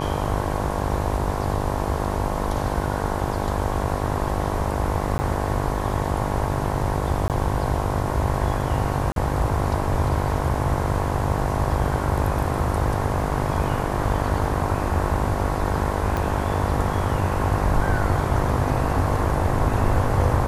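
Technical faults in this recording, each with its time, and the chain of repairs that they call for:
mains buzz 50 Hz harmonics 22 −27 dBFS
0:05.18–0:05.19: drop-out 10 ms
0:07.28–0:07.30: drop-out 18 ms
0:09.12–0:09.16: drop-out 42 ms
0:16.17: click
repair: click removal
hum removal 50 Hz, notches 22
repair the gap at 0:05.18, 10 ms
repair the gap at 0:07.28, 18 ms
repair the gap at 0:09.12, 42 ms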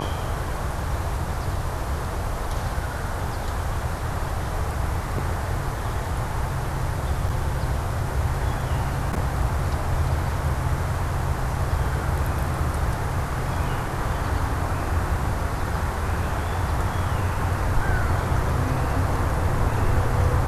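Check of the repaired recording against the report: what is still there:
0:16.17: click

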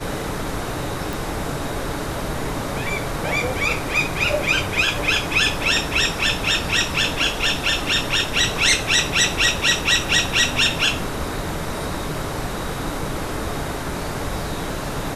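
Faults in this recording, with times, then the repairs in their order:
0:01.13: click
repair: click removal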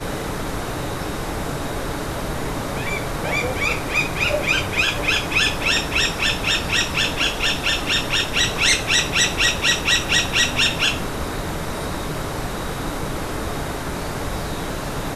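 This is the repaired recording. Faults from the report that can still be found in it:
none of them is left

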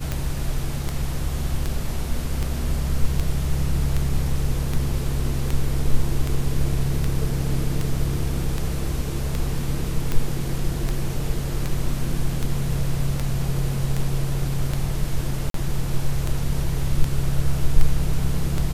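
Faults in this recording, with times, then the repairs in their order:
scratch tick 78 rpm
0:15.50–0:15.54: drop-out 43 ms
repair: click removal
repair the gap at 0:15.50, 43 ms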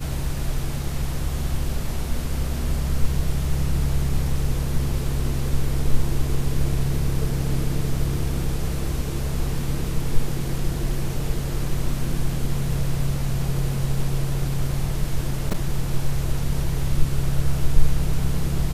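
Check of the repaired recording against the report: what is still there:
none of them is left

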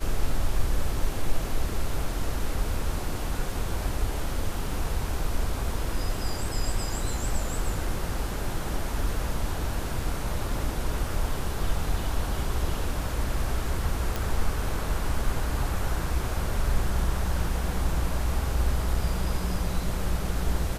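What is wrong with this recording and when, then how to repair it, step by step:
0:14.16: click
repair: click removal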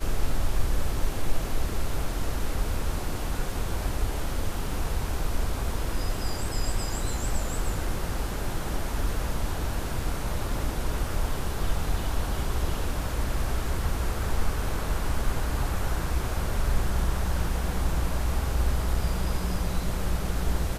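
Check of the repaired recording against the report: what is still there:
none of them is left

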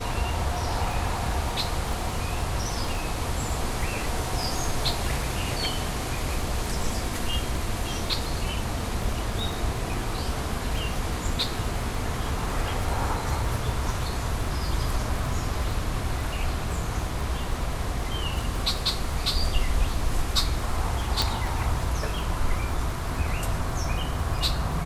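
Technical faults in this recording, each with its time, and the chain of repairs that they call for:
surface crackle 25 per second −31 dBFS
0:21.22: click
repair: click removal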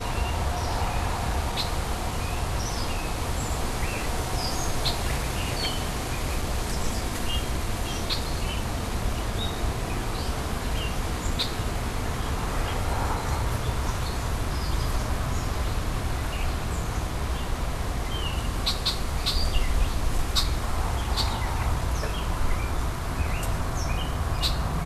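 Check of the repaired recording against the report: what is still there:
none of them is left

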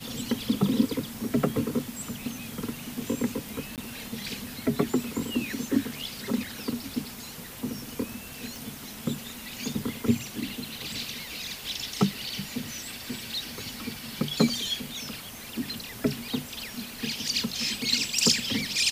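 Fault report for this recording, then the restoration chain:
0:03.76–0:03.78: drop-out 18 ms
0:08.56: click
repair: click removal
repair the gap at 0:03.76, 18 ms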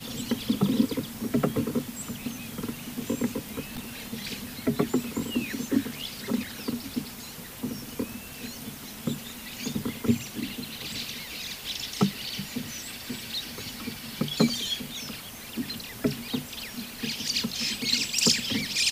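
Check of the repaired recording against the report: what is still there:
none of them is left

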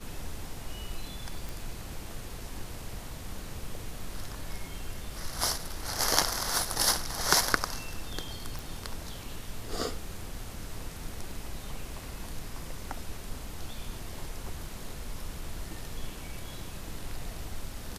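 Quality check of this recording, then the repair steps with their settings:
0:01.49: click
0:08.59: click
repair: click removal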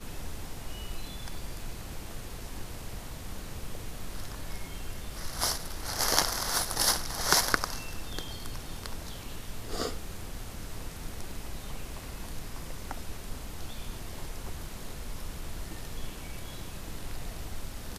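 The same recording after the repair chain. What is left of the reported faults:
none of them is left

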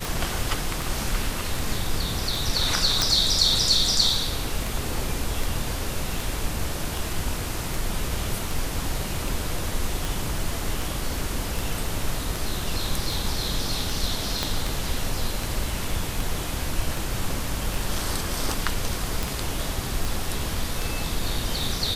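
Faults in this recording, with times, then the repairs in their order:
scratch tick 78 rpm
0:03.02: click
0:14.43: click −9 dBFS
0:19.23: click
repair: click removal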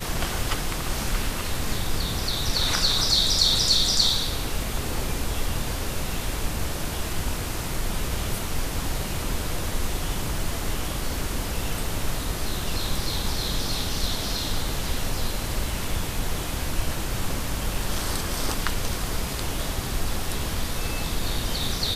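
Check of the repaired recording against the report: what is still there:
0:14.43: click

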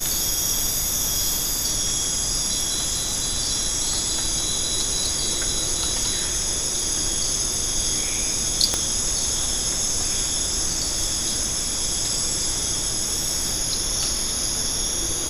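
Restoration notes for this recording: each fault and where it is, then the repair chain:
0:08.74: click −7 dBFS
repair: click removal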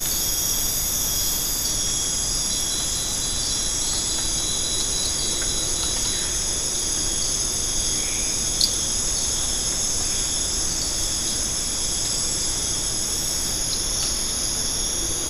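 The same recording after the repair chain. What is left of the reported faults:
0:08.74: click

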